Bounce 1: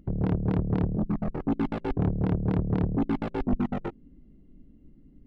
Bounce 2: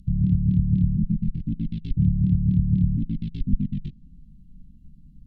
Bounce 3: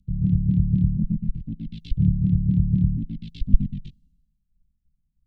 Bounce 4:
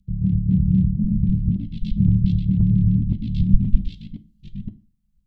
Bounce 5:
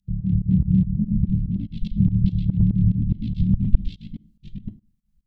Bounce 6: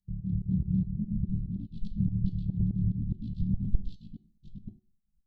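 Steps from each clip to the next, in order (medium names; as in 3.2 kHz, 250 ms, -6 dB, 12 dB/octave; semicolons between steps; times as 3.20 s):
low-pass that closes with the level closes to 1.9 kHz, closed at -23 dBFS; elliptic band-stop 180–3600 Hz, stop band 70 dB; trim +7.5 dB
three bands expanded up and down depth 100%
chunks repeated in reverse 521 ms, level -1 dB; on a send at -10.5 dB: reverberation RT60 0.30 s, pre-delay 5 ms
volume shaper 144 bpm, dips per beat 2, -21 dB, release 124 ms
Butterworth band-stop 1.8 kHz, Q 0.58; feedback comb 370 Hz, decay 0.4 s, harmonics all, mix 70%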